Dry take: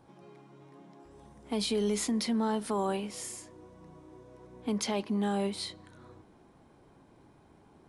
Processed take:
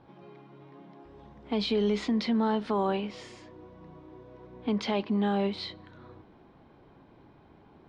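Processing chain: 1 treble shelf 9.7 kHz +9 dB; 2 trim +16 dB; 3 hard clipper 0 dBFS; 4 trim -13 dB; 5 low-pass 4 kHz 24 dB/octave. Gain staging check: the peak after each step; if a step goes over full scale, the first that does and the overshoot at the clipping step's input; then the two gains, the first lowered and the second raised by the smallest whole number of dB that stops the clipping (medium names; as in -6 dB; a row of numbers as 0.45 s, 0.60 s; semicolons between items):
-18.0 dBFS, -2.0 dBFS, -2.0 dBFS, -15.0 dBFS, -17.0 dBFS; nothing clips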